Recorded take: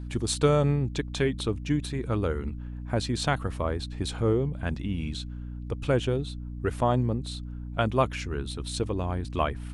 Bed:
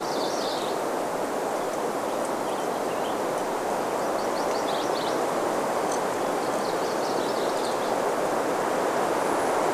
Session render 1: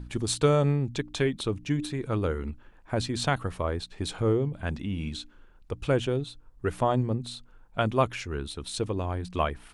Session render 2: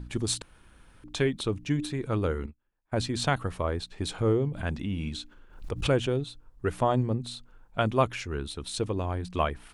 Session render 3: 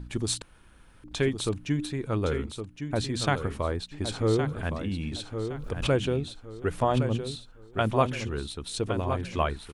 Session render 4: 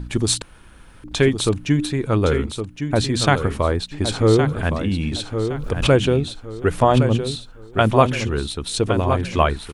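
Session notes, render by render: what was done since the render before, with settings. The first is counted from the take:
de-hum 60 Hz, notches 5
0.42–1.04 s: room tone; 2.46–2.96 s: upward expansion 2.5:1, over -43 dBFS; 4.37–6.08 s: swell ahead of each attack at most 110 dB/s
feedback delay 1114 ms, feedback 30%, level -8 dB
trim +9.5 dB; peak limiter -2 dBFS, peak gain reduction 1 dB

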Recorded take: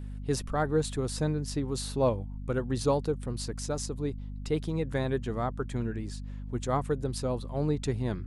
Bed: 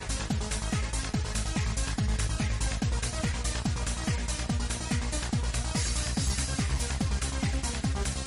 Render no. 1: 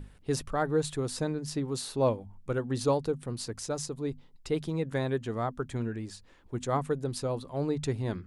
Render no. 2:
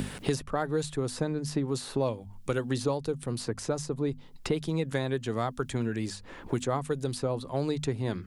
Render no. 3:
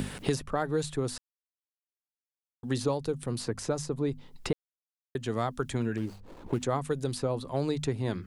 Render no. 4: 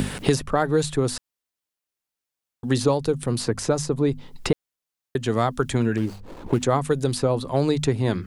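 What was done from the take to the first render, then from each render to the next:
hum notches 50/100/150/200/250 Hz
three bands compressed up and down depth 100%
1.18–2.63 s: mute; 4.53–5.15 s: mute; 5.97–6.63 s: median filter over 25 samples
trim +8.5 dB

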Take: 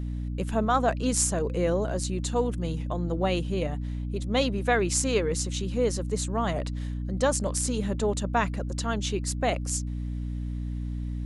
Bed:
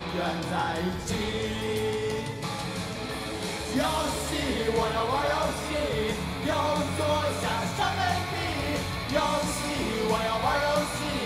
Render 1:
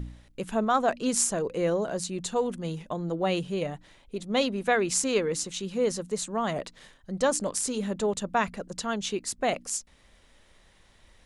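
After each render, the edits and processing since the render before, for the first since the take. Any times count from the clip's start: de-hum 60 Hz, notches 5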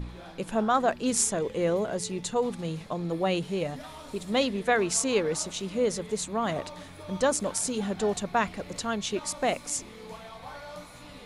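add bed -17 dB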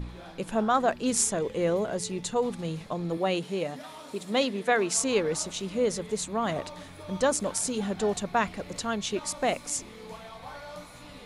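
3.17–4.98 s: high-pass 180 Hz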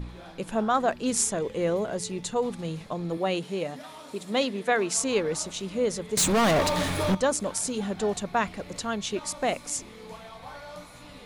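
6.17–7.15 s: waveshaping leveller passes 5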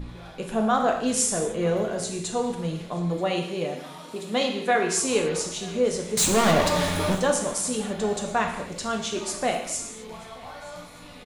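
delay 931 ms -23.5 dB; gated-style reverb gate 280 ms falling, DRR 2 dB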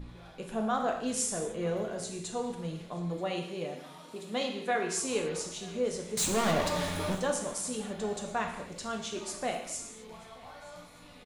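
trim -8 dB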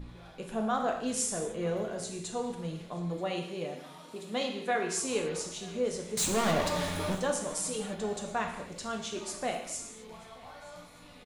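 7.50–7.95 s: comb 6.4 ms, depth 78%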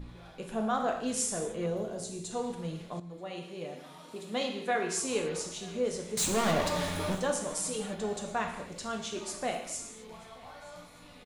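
1.66–2.31 s: peaking EQ 1.8 kHz -8.5 dB 1.7 oct; 3.00–4.09 s: fade in, from -12.5 dB

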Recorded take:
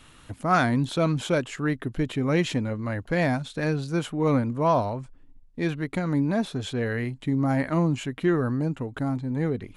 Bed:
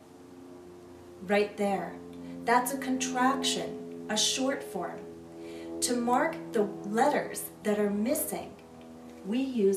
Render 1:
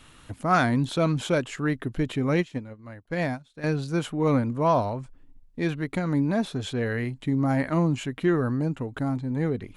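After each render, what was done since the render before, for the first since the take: 2.34–3.64 s: upward expansion 2.5:1, over -34 dBFS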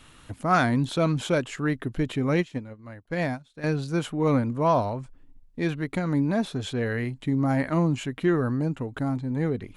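no audible change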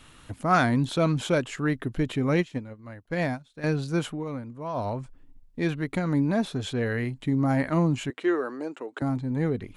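4.09–4.89 s: dip -12 dB, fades 0.16 s; 8.10–9.02 s: Chebyshev band-pass 350–8700 Hz, order 3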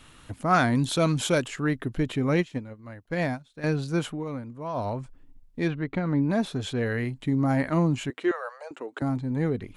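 0.75–1.48 s: treble shelf 4.4 kHz +10.5 dB; 5.68–6.30 s: distance through air 210 m; 8.31–8.71 s: steep high-pass 500 Hz 96 dB/octave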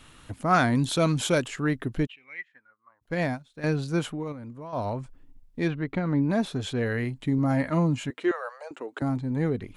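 2.05–3.01 s: band-pass filter 3 kHz -> 960 Hz, Q 11; 4.32–4.73 s: compression 10:1, threshold -35 dBFS; 7.38–8.20 s: comb of notches 380 Hz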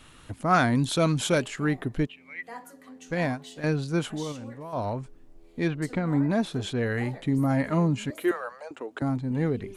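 add bed -17 dB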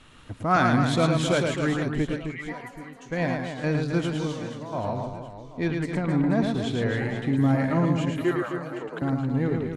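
distance through air 52 m; reverse bouncing-ball echo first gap 110 ms, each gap 1.4×, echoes 5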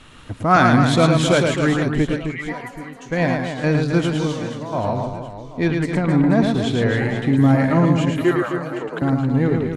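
trim +7 dB

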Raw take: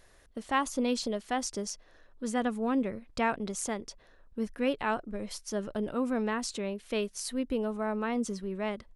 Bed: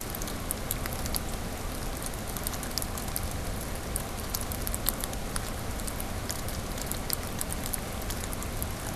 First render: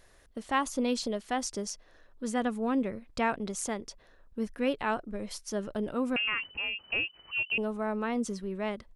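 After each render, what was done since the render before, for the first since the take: 6.16–7.58 s: frequency inversion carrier 3 kHz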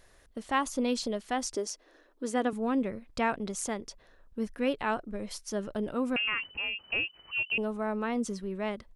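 1.55–2.53 s: resonant low shelf 210 Hz -13 dB, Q 3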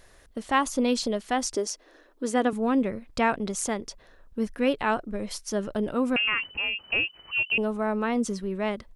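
trim +5 dB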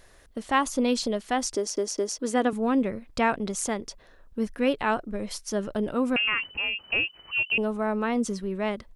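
1.56 s: stutter in place 0.21 s, 3 plays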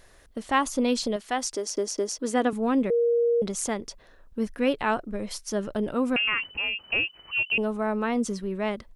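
1.16–1.69 s: bass shelf 300 Hz -8.5 dB; 2.90–3.42 s: bleep 471 Hz -19 dBFS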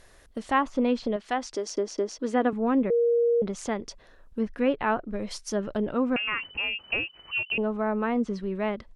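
low-pass that closes with the level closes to 2.2 kHz, closed at -22.5 dBFS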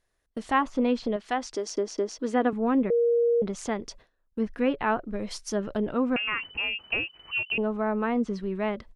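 band-stop 560 Hz, Q 17; gate with hold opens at -41 dBFS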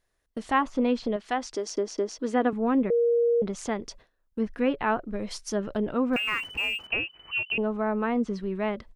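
6.13–6.87 s: companding laws mixed up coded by mu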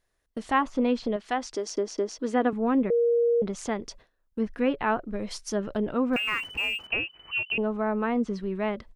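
no audible change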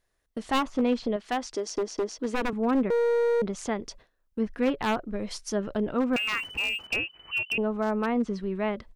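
one-sided wavefolder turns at -21.5 dBFS

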